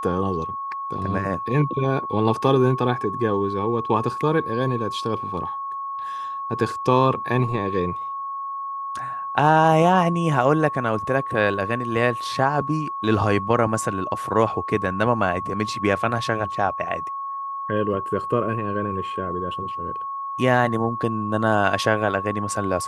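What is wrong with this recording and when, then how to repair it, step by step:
tone 1100 Hz -27 dBFS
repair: notch 1100 Hz, Q 30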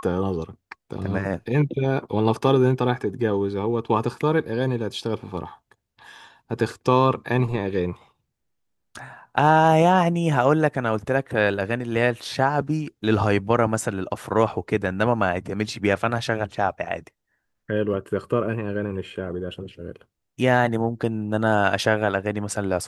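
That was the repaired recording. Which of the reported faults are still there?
none

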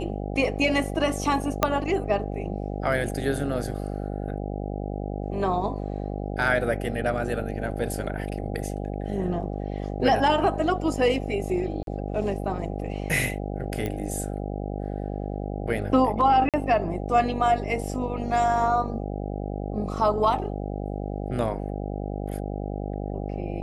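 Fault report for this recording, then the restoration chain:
buzz 50 Hz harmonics 16 -31 dBFS
1.63 pop -5 dBFS
11.83–11.87 gap 42 ms
13.86 pop -17 dBFS
16.49–16.54 gap 47 ms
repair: de-click; de-hum 50 Hz, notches 16; interpolate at 11.83, 42 ms; interpolate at 16.49, 47 ms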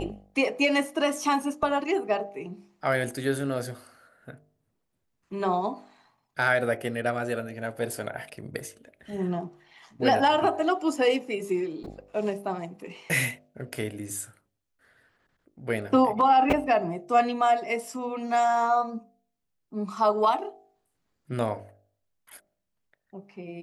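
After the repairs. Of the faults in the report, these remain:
1.63 pop

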